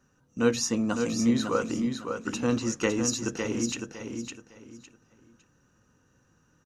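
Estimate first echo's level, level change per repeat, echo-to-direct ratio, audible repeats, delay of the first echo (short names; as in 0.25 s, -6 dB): -6.0 dB, -12.0 dB, -5.5 dB, 3, 0.557 s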